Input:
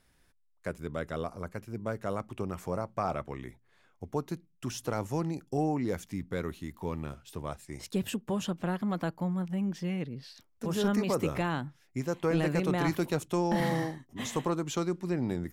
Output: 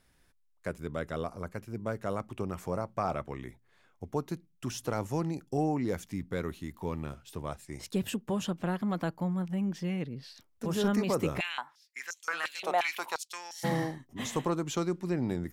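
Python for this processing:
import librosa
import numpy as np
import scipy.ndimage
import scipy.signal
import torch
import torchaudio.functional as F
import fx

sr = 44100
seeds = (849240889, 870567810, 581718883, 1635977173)

y = fx.filter_held_highpass(x, sr, hz=5.7, low_hz=700.0, high_hz=6300.0, at=(11.39, 13.63), fade=0.02)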